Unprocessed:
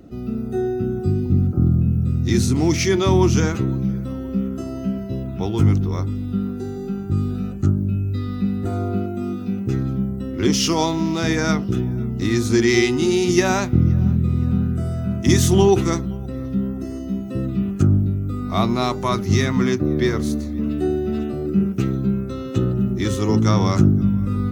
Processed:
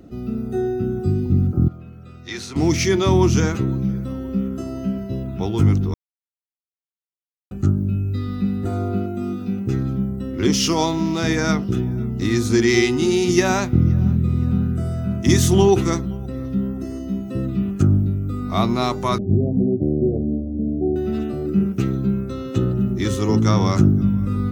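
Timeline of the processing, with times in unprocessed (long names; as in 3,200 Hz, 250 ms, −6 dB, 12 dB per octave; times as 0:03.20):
0:01.68–0:02.56: three-way crossover with the lows and the highs turned down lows −22 dB, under 520 Hz, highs −14 dB, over 5,000 Hz
0:05.94–0:07.51: silence
0:19.18–0:20.96: Butterworth low-pass 740 Hz 96 dB per octave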